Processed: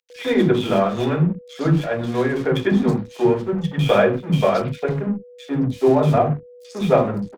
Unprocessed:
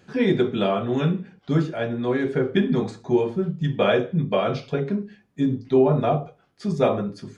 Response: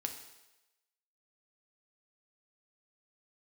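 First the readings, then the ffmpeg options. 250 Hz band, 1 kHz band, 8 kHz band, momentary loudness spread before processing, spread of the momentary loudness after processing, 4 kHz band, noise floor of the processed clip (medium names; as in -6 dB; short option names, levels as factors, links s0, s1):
+3.0 dB, +5.0 dB, no reading, 8 LU, 8 LU, +3.0 dB, -44 dBFS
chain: -filter_complex "[0:a]aeval=exprs='sgn(val(0))*max(abs(val(0))-0.0133,0)':c=same,aeval=exprs='val(0)+0.00562*sin(2*PI*490*n/s)':c=same,acrossover=split=300|2600[s0][s1][s2];[s1]adelay=100[s3];[s0]adelay=160[s4];[s4][s3][s2]amix=inputs=3:normalize=0,volume=2"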